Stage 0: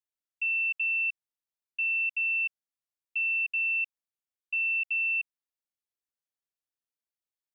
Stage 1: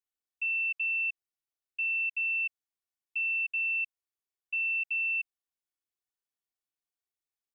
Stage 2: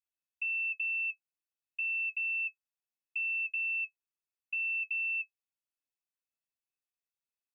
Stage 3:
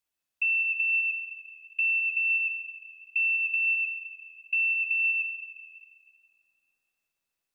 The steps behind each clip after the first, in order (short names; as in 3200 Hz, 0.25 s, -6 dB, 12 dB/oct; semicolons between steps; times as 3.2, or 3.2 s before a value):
comb 2.7 ms; gain -4 dB
small resonant body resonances 2600 Hz, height 18 dB, ringing for 90 ms; gain -7 dB
reverb RT60 4.2 s, pre-delay 95 ms, DRR 3.5 dB; gain +8 dB